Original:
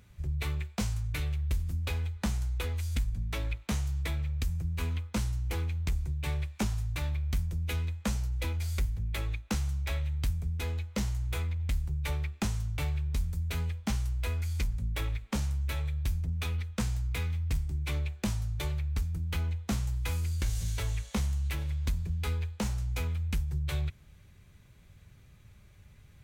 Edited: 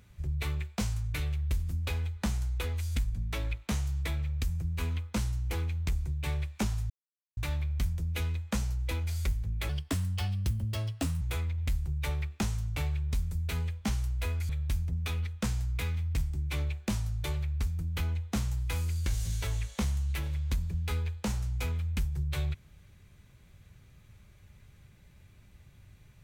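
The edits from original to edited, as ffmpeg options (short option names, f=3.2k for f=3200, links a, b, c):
-filter_complex "[0:a]asplit=5[a][b][c][d][e];[a]atrim=end=6.9,asetpts=PTS-STARTPTS,afade=t=out:st=6.896:d=0.004:c=hsin,apad=pad_dur=0.47[f];[b]atrim=start=6.9:end=9.224,asetpts=PTS-STARTPTS,afade=t=in:d=0.004:c=hsin[g];[c]atrim=start=9.22:end=11.23,asetpts=PTS-STARTPTS,asetrate=58212,aresample=44100,atrim=end_sample=67152,asetpts=PTS-STARTPTS[h];[d]atrim=start=11.226:end=14.512[i];[e]atrim=start=15.848[j];[f][g]concat=n=2:v=0:a=1[k];[k][h]acrossfade=d=0.004:c1=hsin:c2=hsin[l];[l][i]acrossfade=d=0.004:c1=hsin:c2=hsin[m];[m][j]acrossfade=d=0.004:c1=hsin:c2=hsin"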